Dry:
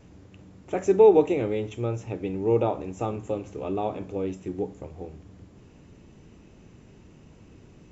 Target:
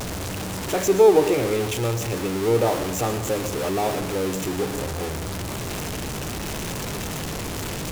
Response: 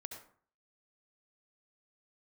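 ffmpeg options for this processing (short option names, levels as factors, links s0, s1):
-filter_complex "[0:a]aeval=exprs='val(0)+0.5*0.0562*sgn(val(0))':c=same,asplit=2[s0][s1];[s1]highpass=f=230:w=0.5412,highpass=f=230:w=1.3066[s2];[1:a]atrim=start_sample=2205,asetrate=28224,aresample=44100,highshelf=f=3600:g=11.5[s3];[s2][s3]afir=irnorm=-1:irlink=0,volume=0.422[s4];[s0][s4]amix=inputs=2:normalize=0"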